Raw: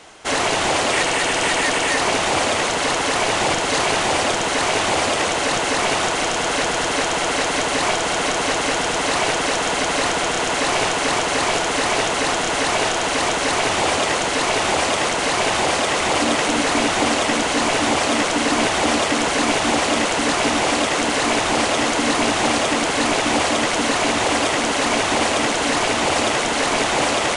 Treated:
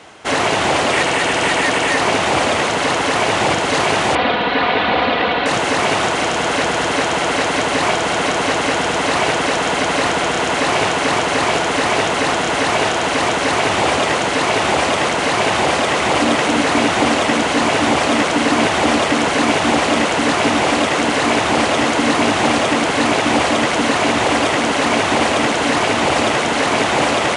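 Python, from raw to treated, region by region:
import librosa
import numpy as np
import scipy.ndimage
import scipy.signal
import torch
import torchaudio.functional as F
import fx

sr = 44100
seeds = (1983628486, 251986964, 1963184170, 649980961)

y = fx.chain(x, sr, fx.ellip_lowpass(hz=4000.0, order=4, stop_db=80),
    fx.comb(ms=4.1, depth=0.51), at=(4.15, 5.46))
y = scipy.signal.sosfilt(scipy.signal.butter(2, 76.0, 'highpass', fs=sr, output='sos'), y)
y = fx.bass_treble(y, sr, bass_db=3, treble_db=-6)
y = y * librosa.db_to_amplitude(3.5)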